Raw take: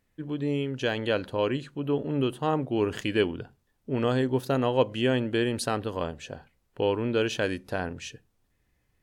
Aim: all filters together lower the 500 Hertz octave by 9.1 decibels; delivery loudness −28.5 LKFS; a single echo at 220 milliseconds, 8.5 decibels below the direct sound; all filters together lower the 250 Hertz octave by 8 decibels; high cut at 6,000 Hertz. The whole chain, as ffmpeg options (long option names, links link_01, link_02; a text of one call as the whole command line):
ffmpeg -i in.wav -af "lowpass=6000,equalizer=frequency=250:width_type=o:gain=-7,equalizer=frequency=500:width_type=o:gain=-9,aecho=1:1:220:0.376,volume=5dB" out.wav